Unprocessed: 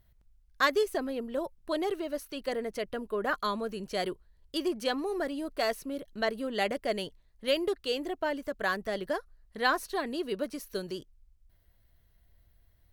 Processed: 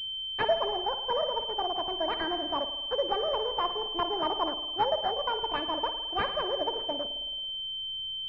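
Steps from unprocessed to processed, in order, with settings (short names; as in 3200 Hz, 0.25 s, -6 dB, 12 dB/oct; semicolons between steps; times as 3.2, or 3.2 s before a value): wide varispeed 1.56×; spring tank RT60 1.2 s, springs 54 ms, chirp 80 ms, DRR 7.5 dB; in parallel at -11.5 dB: backlash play -30 dBFS; on the sum: pulse-width modulation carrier 3100 Hz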